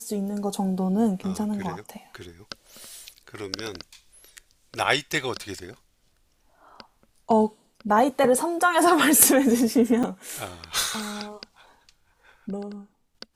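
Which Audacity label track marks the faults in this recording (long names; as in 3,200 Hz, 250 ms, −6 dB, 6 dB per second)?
10.030000	10.040000	drop-out 5.9 ms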